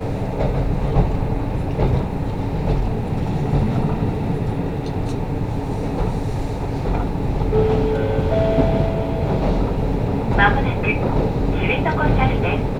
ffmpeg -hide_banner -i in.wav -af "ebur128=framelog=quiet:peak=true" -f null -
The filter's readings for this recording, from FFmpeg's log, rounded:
Integrated loudness:
  I:         -20.7 LUFS
  Threshold: -30.7 LUFS
Loudness range:
  LRA:         4.1 LU
  Threshold: -40.9 LUFS
  LRA low:   -23.2 LUFS
  LRA high:  -19.1 LUFS
True peak:
  Peak:       -1.3 dBFS